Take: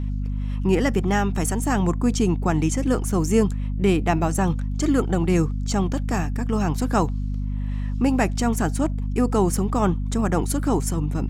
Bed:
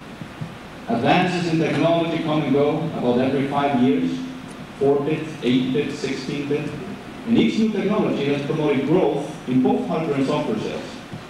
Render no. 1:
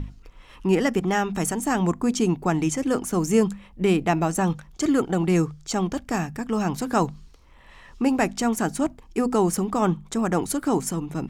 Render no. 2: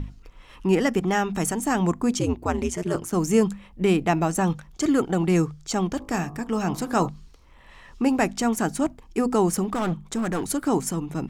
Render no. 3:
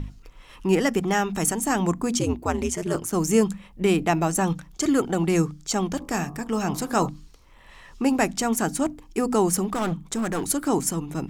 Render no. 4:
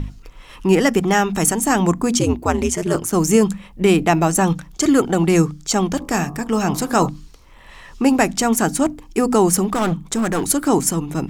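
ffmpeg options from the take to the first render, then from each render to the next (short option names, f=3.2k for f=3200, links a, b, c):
-af "bandreject=f=50:t=h:w=6,bandreject=f=100:t=h:w=6,bandreject=f=150:t=h:w=6,bandreject=f=200:t=h:w=6,bandreject=f=250:t=h:w=6"
-filter_complex "[0:a]asettb=1/sr,asplit=3[a][b][c];[a]atrim=end=2.194[d];[b]atrim=start=2.19:end=3.13,asetpts=PTS-STARTPTS,afade=t=in:d=0.004:c=qsin,afade=t=out:st=0.936:d=0.004:c=qsin,aeval=exprs='val(0)*sin(2*PI*90*n/s)':c=same[e];[c]atrim=start=3.126[f];[d][e]acrossfade=d=0.004:c1=hsin:c2=qsin[g];[g][f]acrossfade=d=0.004:c1=qsin:c2=hsin,asplit=3[h][i][j];[h]afade=t=out:st=5.99:d=0.02[k];[i]bandreject=f=52.26:t=h:w=4,bandreject=f=104.52:t=h:w=4,bandreject=f=156.78:t=h:w=4,bandreject=f=209.04:t=h:w=4,bandreject=f=261.3:t=h:w=4,bandreject=f=313.56:t=h:w=4,bandreject=f=365.82:t=h:w=4,bandreject=f=418.08:t=h:w=4,bandreject=f=470.34:t=h:w=4,bandreject=f=522.6:t=h:w=4,bandreject=f=574.86:t=h:w=4,bandreject=f=627.12:t=h:w=4,bandreject=f=679.38:t=h:w=4,bandreject=f=731.64:t=h:w=4,bandreject=f=783.9:t=h:w=4,bandreject=f=836.16:t=h:w=4,bandreject=f=888.42:t=h:w=4,bandreject=f=940.68:t=h:w=4,bandreject=f=992.94:t=h:w=4,bandreject=f=1.0452k:t=h:w=4,bandreject=f=1.09746k:t=h:w=4,bandreject=f=1.14972k:t=h:w=4,bandreject=f=1.20198k:t=h:w=4,bandreject=f=1.25424k:t=h:w=4,bandreject=f=1.3065k:t=h:w=4,afade=t=in:st=5.99:d=0.02,afade=t=out:st=7.07:d=0.02[l];[j]afade=t=in:st=7.07:d=0.02[m];[k][l][m]amix=inputs=3:normalize=0,asettb=1/sr,asplit=3[n][o][p];[n]atrim=end=9.644[q];[o]atrim=start=9.64:end=10.48,asetpts=PTS-STARTPTS,afade=t=in:d=0.004:c=qsin,afade=t=out:st=0.836:d=0.004:c=qsin,asoftclip=type=hard:threshold=-21.5dB[r];[p]atrim=start=10.476[s];[q][r]acrossfade=d=0.004:c1=hsin:c2=qsin[t];[t][s]acrossfade=d=0.004:c1=qsin:c2=hsin"
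-af "highshelf=f=5.4k:g=6,bandreject=f=60:t=h:w=6,bandreject=f=120:t=h:w=6,bandreject=f=180:t=h:w=6,bandreject=f=240:t=h:w=6,bandreject=f=300:t=h:w=6"
-af "volume=6.5dB,alimiter=limit=-3dB:level=0:latency=1"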